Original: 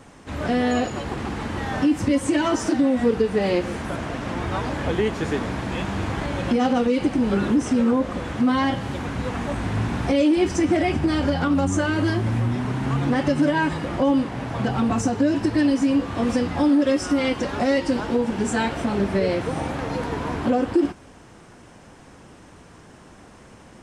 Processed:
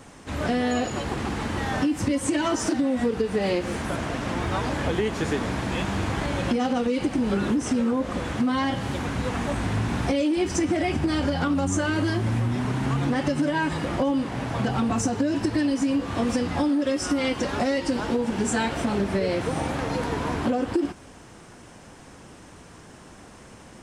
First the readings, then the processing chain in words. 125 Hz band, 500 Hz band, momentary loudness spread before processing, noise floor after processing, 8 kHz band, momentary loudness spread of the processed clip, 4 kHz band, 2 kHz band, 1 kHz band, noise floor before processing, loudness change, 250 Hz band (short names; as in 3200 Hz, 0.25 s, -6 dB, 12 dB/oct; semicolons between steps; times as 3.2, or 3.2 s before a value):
-1.5 dB, -3.0 dB, 8 LU, -47 dBFS, +2.0 dB, 4 LU, -0.5 dB, -1.5 dB, -2.0 dB, -47 dBFS, -3.0 dB, -3.5 dB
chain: high shelf 4200 Hz +5 dB; compressor, threshold -20 dBFS, peak gain reduction 6 dB